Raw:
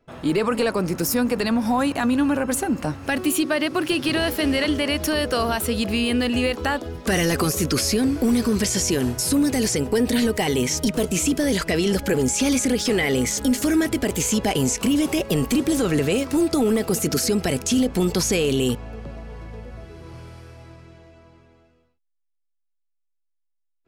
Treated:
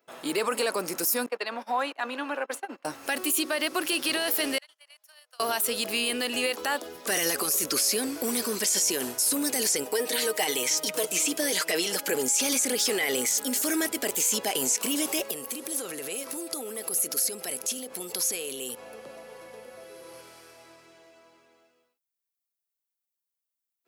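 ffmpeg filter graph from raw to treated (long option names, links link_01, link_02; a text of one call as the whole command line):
ffmpeg -i in.wav -filter_complex "[0:a]asettb=1/sr,asplit=3[link_01][link_02][link_03];[link_01]atrim=end=1.264[link_04];[link_02]atrim=start=1.26:end=2.85,asetpts=PTS-STARTPTS,afade=type=in:duration=0.004:curve=qsin,afade=type=out:start_time=1.586:duration=0.004:curve=qsin,highpass=frequency=170:width=0.5412,highpass=frequency=170:width=1.3066,agate=range=-25dB:threshold=-24dB:ratio=16:release=100:detection=peak,acrossover=split=360 4100:gain=0.251 1 0.1[link_05][link_06][link_07];[link_05][link_06][link_07]amix=inputs=3:normalize=0[link_08];[link_03]atrim=start=2.846[link_09];[link_04][link_08]acrossfade=duration=0.004:curve1=hsin:curve2=qsin[link_10];[link_10][link_09]acrossfade=duration=0.004:curve1=qsin:curve2=hsin,asettb=1/sr,asplit=3[link_11][link_12][link_13];[link_11]atrim=end=4.584[link_14];[link_12]atrim=start=4.58:end=5.4,asetpts=PTS-STARTPTS,afade=type=in:duration=0.004:curve=qsin,afade=type=out:start_time=0.816:duration=0.004:curve=qsin,agate=range=-37dB:threshold=-19dB:ratio=16:release=100:detection=peak,acompressor=threshold=-44dB:ratio=5:attack=3.2:release=140:knee=1:detection=peak,highpass=frequency=750:width=0.5412,highpass=frequency=750:width=1.3066[link_15];[link_13]atrim=start=5.396[link_16];[link_14][link_15]acrossfade=duration=0.004:curve1=hsin:curve2=qsin[link_17];[link_17][link_16]acrossfade=duration=0.004:curve1=qsin:curve2=hsin,asettb=1/sr,asplit=3[link_18][link_19][link_20];[link_18]atrim=end=9.854[link_21];[link_19]atrim=start=9.85:end=12.09,asetpts=PTS-STARTPTS,afade=type=in:duration=0.004:curve=qsin,afade=type=out:start_time=2.236:duration=0.004:curve=qsin,highpass=frequency=260:poles=1,acrossover=split=5800[link_22][link_23];[link_23]acompressor=threshold=-33dB:ratio=4:attack=1:release=60[link_24];[link_22][link_24]amix=inputs=2:normalize=0,aecho=1:1:6.4:0.49,atrim=end_sample=98784[link_25];[link_20]atrim=start=12.086[link_26];[link_21][link_25]acrossfade=duration=0.004:curve1=hsin:curve2=qsin[link_27];[link_27][link_26]acrossfade=duration=0.004:curve1=qsin:curve2=hsin,asettb=1/sr,asplit=3[link_28][link_29][link_30];[link_28]atrim=end=15.314[link_31];[link_29]atrim=start=15.31:end=20.21,asetpts=PTS-STARTPTS,afade=type=in:duration=0.004:curve=qsin,afade=type=out:start_time=4.896:duration=0.004:curve=qsin,equalizer=frequency=11000:width=7.8:gain=13.5,acompressor=threshold=-27dB:ratio=6:attack=3.2:release=140:knee=1:detection=peak,aeval=exprs='val(0)+0.00891*sin(2*PI*520*n/s)':channel_layout=same[link_32];[link_30]atrim=start=20.206[link_33];[link_31][link_32]acrossfade=duration=0.004:curve1=hsin:curve2=qsin[link_34];[link_34][link_33]acrossfade=duration=0.004:curve1=qsin:curve2=hsin,highpass=420,aemphasis=mode=production:type=50kf,alimiter=limit=-12dB:level=0:latency=1:release=22,volume=-3.5dB" out.wav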